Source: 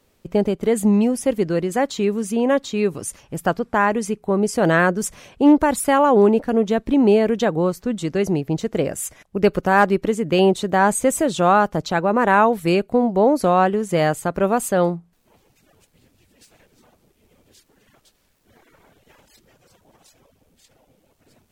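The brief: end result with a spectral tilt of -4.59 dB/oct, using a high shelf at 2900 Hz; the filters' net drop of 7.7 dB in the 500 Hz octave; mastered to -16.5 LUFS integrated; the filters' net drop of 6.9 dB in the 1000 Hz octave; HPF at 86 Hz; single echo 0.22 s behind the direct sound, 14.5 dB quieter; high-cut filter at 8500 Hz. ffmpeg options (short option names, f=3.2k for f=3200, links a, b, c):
-af "highpass=86,lowpass=8.5k,equalizer=f=500:t=o:g=-8.5,equalizer=f=1k:t=o:g=-6.5,highshelf=f=2.9k:g=5,aecho=1:1:220:0.188,volume=6.5dB"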